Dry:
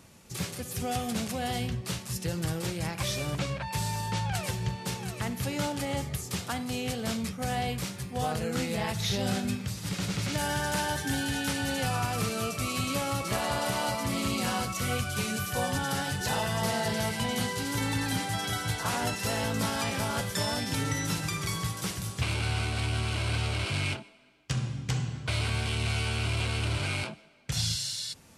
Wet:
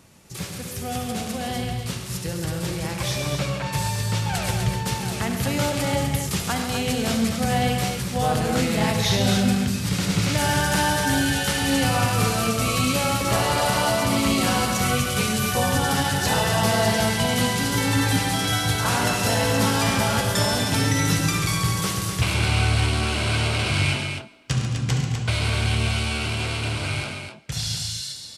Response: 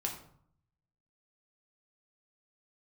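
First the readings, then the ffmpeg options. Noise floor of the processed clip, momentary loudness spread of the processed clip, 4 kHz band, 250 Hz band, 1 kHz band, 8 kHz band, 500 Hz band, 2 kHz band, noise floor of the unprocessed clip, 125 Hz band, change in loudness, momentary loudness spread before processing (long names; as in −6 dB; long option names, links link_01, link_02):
−34 dBFS, 8 LU, +8.0 dB, +9.0 dB, +8.0 dB, +8.0 dB, +8.5 dB, +8.0 dB, −44 dBFS, +8.0 dB, +8.0 dB, 4 LU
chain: -filter_complex "[0:a]dynaudnorm=framelen=670:gausssize=11:maxgain=5.5dB,asplit=2[link_01][link_02];[link_02]aecho=0:1:70|102|138|215|250:0.266|0.282|0.355|0.188|0.473[link_03];[link_01][link_03]amix=inputs=2:normalize=0,volume=1.5dB"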